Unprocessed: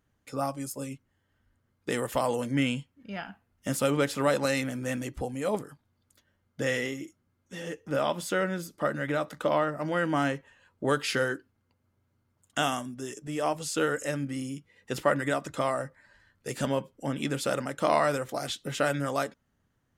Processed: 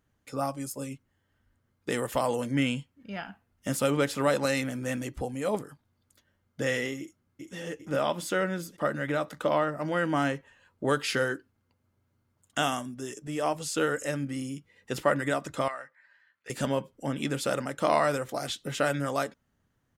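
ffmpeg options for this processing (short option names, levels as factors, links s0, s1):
-filter_complex "[0:a]asplit=2[s0][s1];[s1]afade=t=in:st=6.99:d=0.01,afade=t=out:st=7.56:d=0.01,aecho=0:1:400|800|1200|1600|2000|2400|2800:0.668344|0.334172|0.167086|0.083543|0.0417715|0.0208857|0.0104429[s2];[s0][s2]amix=inputs=2:normalize=0,asettb=1/sr,asplit=3[s3][s4][s5];[s3]atrim=end=15.684[s6];[s4]atrim=start=15.68:end=16.5,asetpts=PTS-STARTPTS,afade=t=in:d=0.004:c=qsin,afade=t=out:st=0.816:d=0.004:c=qsin,bandpass=f=2000:t=q:w=1.3[s7];[s5]atrim=start=16.496[s8];[s6][s7]acrossfade=d=0.004:c1=hsin:c2=qsin[s9];[s9][s8]acrossfade=d=0.004:c1=qsin:c2=hsin"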